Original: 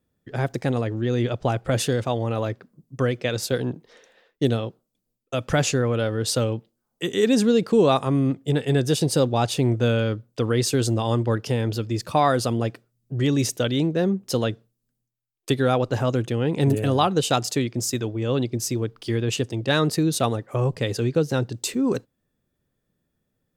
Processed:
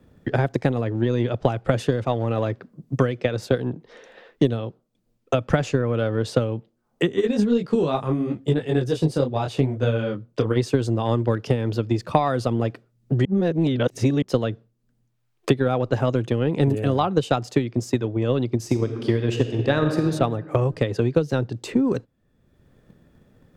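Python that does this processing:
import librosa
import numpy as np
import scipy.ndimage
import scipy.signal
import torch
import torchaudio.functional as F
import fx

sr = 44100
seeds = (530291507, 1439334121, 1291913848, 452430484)

y = fx.detune_double(x, sr, cents=28, at=(7.12, 10.55), fade=0.02)
y = fx.reverb_throw(y, sr, start_s=18.58, length_s=1.44, rt60_s=1.5, drr_db=4.5)
y = fx.edit(y, sr, fx.reverse_span(start_s=13.25, length_s=0.97), tone=tone)
y = fx.lowpass(y, sr, hz=2000.0, slope=6)
y = fx.transient(y, sr, attack_db=8, sustain_db=1)
y = fx.band_squash(y, sr, depth_pct=70)
y = y * 10.0 ** (-1.5 / 20.0)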